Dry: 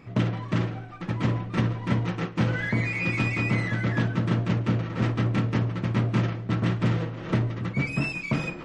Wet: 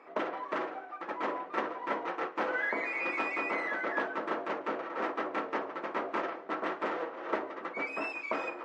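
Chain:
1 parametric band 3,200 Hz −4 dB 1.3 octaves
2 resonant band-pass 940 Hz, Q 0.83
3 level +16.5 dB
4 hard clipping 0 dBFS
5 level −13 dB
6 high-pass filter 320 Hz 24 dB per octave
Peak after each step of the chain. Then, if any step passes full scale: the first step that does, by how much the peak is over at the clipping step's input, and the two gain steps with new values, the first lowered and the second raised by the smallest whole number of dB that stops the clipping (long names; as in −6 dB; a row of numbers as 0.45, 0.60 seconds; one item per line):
−11.5, −18.5, −2.0, −2.0, −15.0, −16.0 dBFS
no step passes full scale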